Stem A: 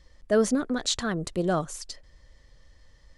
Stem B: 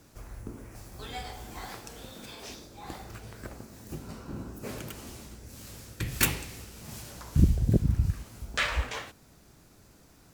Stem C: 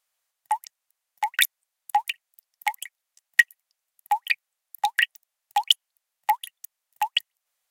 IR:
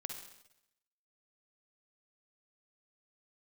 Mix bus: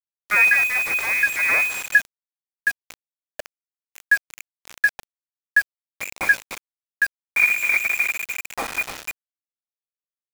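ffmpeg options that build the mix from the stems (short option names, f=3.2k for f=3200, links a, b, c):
-filter_complex "[0:a]aeval=exprs='abs(val(0))':c=same,volume=0.5dB[a];[1:a]acrusher=bits=5:dc=4:mix=0:aa=0.000001,volume=-3.5dB,asplit=2[b][c];[c]volume=-9dB[d];[2:a]lowpass=f=730:t=q:w=5,lowshelf=f=500:g=7,volume=-10dB[e];[d]aecho=0:1:297|594|891|1188|1485:1|0.35|0.122|0.0429|0.015[f];[a][b][e][f]amix=inputs=4:normalize=0,acontrast=39,lowpass=f=2.1k:t=q:w=0.5098,lowpass=f=2.1k:t=q:w=0.6013,lowpass=f=2.1k:t=q:w=0.9,lowpass=f=2.1k:t=q:w=2.563,afreqshift=-2500,acrusher=bits=4:mix=0:aa=0.000001"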